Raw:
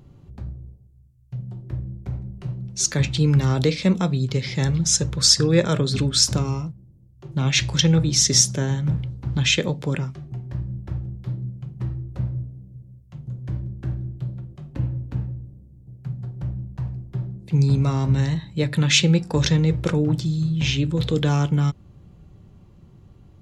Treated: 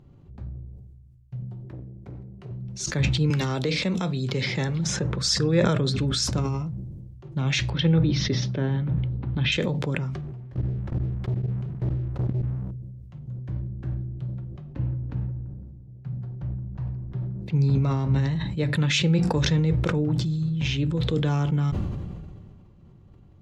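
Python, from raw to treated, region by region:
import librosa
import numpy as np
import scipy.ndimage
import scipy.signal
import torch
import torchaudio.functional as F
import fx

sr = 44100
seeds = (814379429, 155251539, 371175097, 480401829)

y = fx.chain(x, sr, fx.highpass(hz=50.0, slope=12),
    fx.low_shelf(hz=110.0, db=-10.0),
    fx.transformer_sat(knee_hz=260.0), at=(1.65, 2.51))
y = fx.chain(y, sr, fx.highpass(hz=210.0, slope=6),
    fx.band_squash(depth_pct=100), at=(3.3, 5.18))
y = fx.chain(y, sr, fx.cheby2_lowpass(hz=7700.0, order=4, stop_db=40),
    fx.peak_eq(hz=290.0, db=3.0, octaves=1.6),
    fx.hum_notches(base_hz=50, count=4), at=(7.7, 9.52))
y = fx.chain(y, sr, fx.leveller(passes=3),
    fx.level_steps(step_db=20), at=(10.21, 12.71))
y = fx.chain(y, sr, fx.peak_eq(hz=9000.0, db=-13.0, octaves=0.43),
    fx.echo_wet_bandpass(ms=170, feedback_pct=38, hz=860.0, wet_db=-18.0), at=(14.54, 18.33))
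y = fx.lowpass(y, sr, hz=3200.0, slope=6)
y = fx.sustainer(y, sr, db_per_s=29.0)
y = y * librosa.db_to_amplitude(-4.0)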